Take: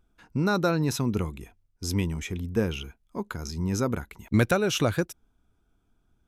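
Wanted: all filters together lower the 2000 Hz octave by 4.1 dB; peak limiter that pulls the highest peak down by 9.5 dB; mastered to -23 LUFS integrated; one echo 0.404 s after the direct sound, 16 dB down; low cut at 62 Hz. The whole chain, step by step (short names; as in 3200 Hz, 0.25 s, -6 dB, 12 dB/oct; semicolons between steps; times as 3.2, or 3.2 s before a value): HPF 62 Hz; bell 2000 Hz -6.5 dB; limiter -20 dBFS; echo 0.404 s -16 dB; gain +8.5 dB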